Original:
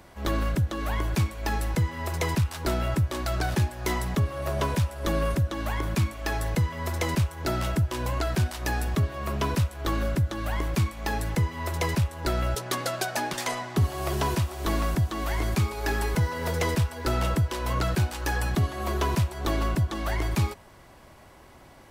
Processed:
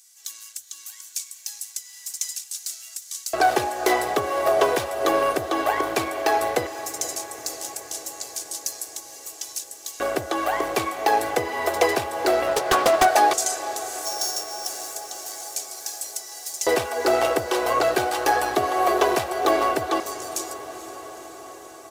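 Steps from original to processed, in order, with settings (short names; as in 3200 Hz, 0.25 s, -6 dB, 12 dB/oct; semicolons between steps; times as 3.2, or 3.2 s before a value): 14.05–14.67 sample sorter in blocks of 8 samples; low shelf 390 Hz +8.5 dB; comb 2.6 ms, depth 66%; in parallel at -7 dB: hard clip -20 dBFS, distortion -7 dB; on the sum: LFO high-pass square 0.15 Hz 580–6700 Hz; on a send: diffused feedback echo 0.465 s, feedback 71%, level -14.5 dB; 12.46–13.08 on the sum: Doppler distortion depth 0.43 ms; gain +2.5 dB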